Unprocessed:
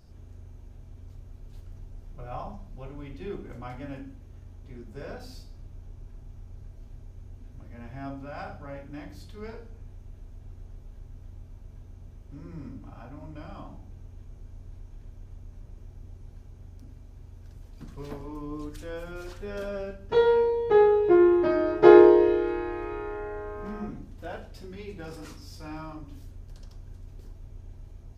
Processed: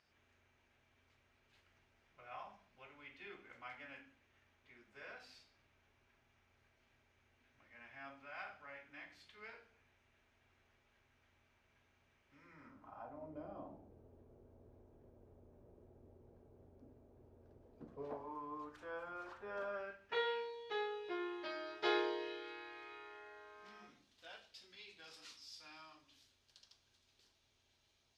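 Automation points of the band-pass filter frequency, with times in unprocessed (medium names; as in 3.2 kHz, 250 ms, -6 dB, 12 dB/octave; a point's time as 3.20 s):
band-pass filter, Q 1.8
12.45 s 2.2 kHz
13.35 s 480 Hz
17.88 s 480 Hz
18.43 s 1.1 kHz
19.63 s 1.1 kHz
20.53 s 3.8 kHz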